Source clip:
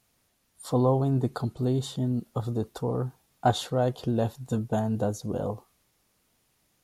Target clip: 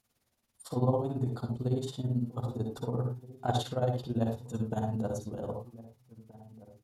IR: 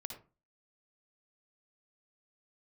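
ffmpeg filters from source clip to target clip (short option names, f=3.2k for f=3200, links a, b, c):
-filter_complex "[0:a]tremolo=f=18:d=0.83,asplit=2[a][b];[b]adelay=1574,volume=-19dB,highshelf=f=4k:g=-35.4[c];[a][c]amix=inputs=2:normalize=0[d];[1:a]atrim=start_sample=2205,afade=t=out:st=0.17:d=0.01,atrim=end_sample=7938[e];[d][e]afir=irnorm=-1:irlink=0"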